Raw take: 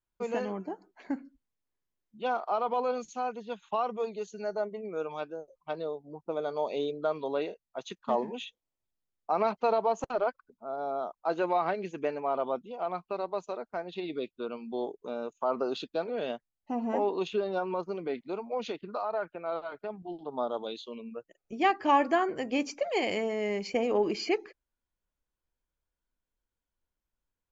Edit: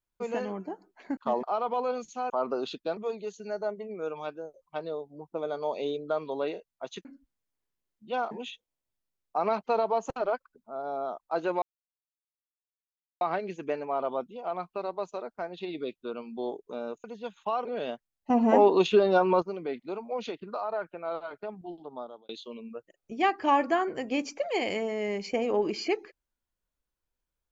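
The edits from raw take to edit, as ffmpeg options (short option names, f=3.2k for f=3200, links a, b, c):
-filter_complex "[0:a]asplit=13[a][b][c][d][e][f][g][h][i][j][k][l][m];[a]atrim=end=1.172[n];[b]atrim=start=7.988:end=8.252[o];[c]atrim=start=2.428:end=3.302[p];[d]atrim=start=15.388:end=16.062[q];[e]atrim=start=3.908:end=7.992[r];[f]atrim=start=1.168:end=2.432[s];[g]atrim=start=8.248:end=11.56,asetpts=PTS-STARTPTS,afade=t=out:st=3.308:d=0.004:c=hsin,apad=pad_dur=1.59[t];[h]atrim=start=11.56:end=15.392,asetpts=PTS-STARTPTS,afade=t=in:d=0.004:c=hsin[u];[i]atrim=start=3.298:end=3.912[v];[j]atrim=start=16.058:end=16.712[w];[k]atrim=start=16.708:end=17.832,asetpts=PTS-STARTPTS,volume=9dB[x];[l]atrim=start=17.828:end=20.7,asetpts=PTS-STARTPTS,afade=t=out:st=2.192:d=0.68[y];[m]atrim=start=20.7,asetpts=PTS-STARTPTS,afade=t=in:d=0.004:c=hsin[z];[n][o]acrossfade=d=0.004:c1=hsin:c2=hsin[aa];[aa][p]acrossfade=d=0.004:c1=hsin:c2=hsin[ab];[ab][q]acrossfade=d=0.004:c1=hsin:c2=hsin[ac];[ac][r]acrossfade=d=0.004:c1=hsin:c2=hsin[ad];[ad][s]acrossfade=d=0.004:c1=hsin:c2=hsin[ae];[t][u]concat=n=2:v=0:a=1[af];[ae][af]acrossfade=d=0.004:c1=hsin:c2=hsin[ag];[ag][v]acrossfade=d=0.004:c1=hsin:c2=hsin[ah];[ah][w]acrossfade=d=0.004:c1=hsin:c2=hsin[ai];[ai][x]acrossfade=d=0.004:c1=hsin:c2=hsin[aj];[y][z]concat=n=2:v=0:a=1[ak];[aj][ak]acrossfade=d=0.004:c1=hsin:c2=hsin"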